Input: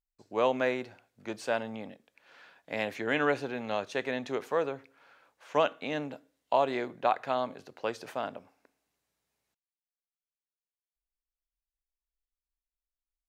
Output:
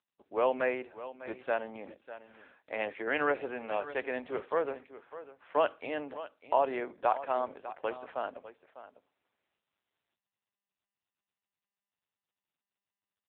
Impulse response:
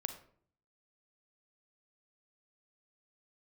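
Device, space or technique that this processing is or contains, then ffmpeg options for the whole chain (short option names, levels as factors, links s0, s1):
satellite phone: -af "highpass=310,lowpass=3100,aecho=1:1:600:0.188" -ar 8000 -c:a libopencore_amrnb -b:a 6700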